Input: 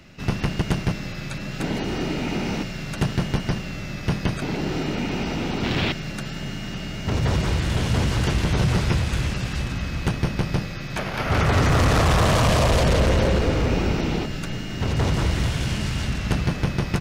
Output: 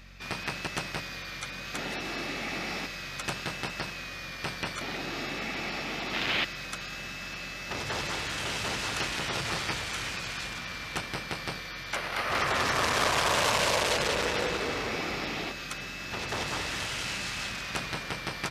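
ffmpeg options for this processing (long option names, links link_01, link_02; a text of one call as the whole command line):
ffmpeg -i in.wav -af "highpass=frequency=1300:poles=1,aeval=exprs='val(0)+0.00316*(sin(2*PI*50*n/s)+sin(2*PI*2*50*n/s)/2+sin(2*PI*3*50*n/s)/3+sin(2*PI*4*50*n/s)/4+sin(2*PI*5*50*n/s)/5)':channel_layout=same,aeval=exprs='0.251*(cos(1*acos(clip(val(0)/0.251,-1,1)))-cos(1*PI/2))+0.0112*(cos(2*acos(clip(val(0)/0.251,-1,1)))-cos(2*PI/2))':channel_layout=same,asetrate=40517,aresample=44100" out.wav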